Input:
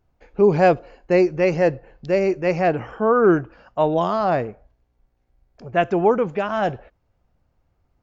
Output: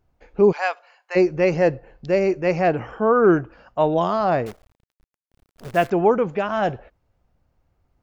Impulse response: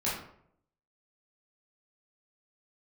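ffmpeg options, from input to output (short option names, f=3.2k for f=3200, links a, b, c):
-filter_complex "[0:a]asplit=3[a][b][c];[a]afade=t=out:st=0.51:d=0.02[d];[b]highpass=f=860:w=0.5412,highpass=f=860:w=1.3066,afade=t=in:st=0.51:d=0.02,afade=t=out:st=1.15:d=0.02[e];[c]afade=t=in:st=1.15:d=0.02[f];[d][e][f]amix=inputs=3:normalize=0,asettb=1/sr,asplit=3[g][h][i];[g]atrim=end=4.464[j];[h]atrim=start=4.46:end=5.9,asetpts=PTS-STARTPTS,afade=t=in:d=0.004:c=qsin,afade=t=out:st=1.436:d=0.004:c=qsin,acrusher=bits=7:dc=4:mix=0:aa=0.000001[k];[i]atrim=start=5.896[l];[j][k]acrossfade=d=0.004:c1=hsin:c2=qsin[m];[m][l]acrossfade=d=0.004:c1=qsin:c2=hsin"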